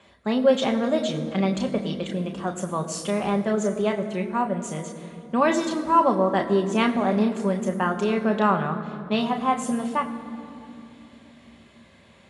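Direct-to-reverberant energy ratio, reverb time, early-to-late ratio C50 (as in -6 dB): 4.0 dB, 2.8 s, 10.0 dB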